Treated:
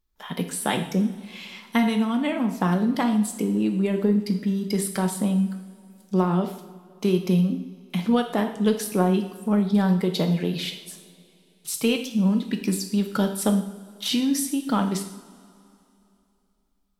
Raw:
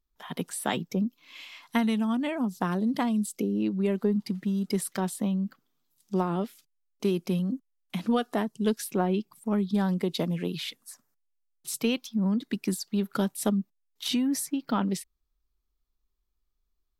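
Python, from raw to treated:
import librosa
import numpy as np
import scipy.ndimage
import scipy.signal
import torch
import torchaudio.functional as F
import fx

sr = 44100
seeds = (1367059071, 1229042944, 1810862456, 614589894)

y = fx.rev_double_slope(x, sr, seeds[0], early_s=0.64, late_s=2.9, knee_db=-18, drr_db=4.5)
y = F.gain(torch.from_numpy(y), 3.5).numpy()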